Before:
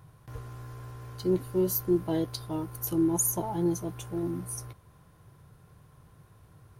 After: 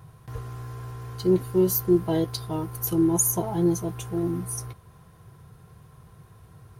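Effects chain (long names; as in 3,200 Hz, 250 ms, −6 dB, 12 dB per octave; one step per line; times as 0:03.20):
notch comb filter 290 Hz
level +6 dB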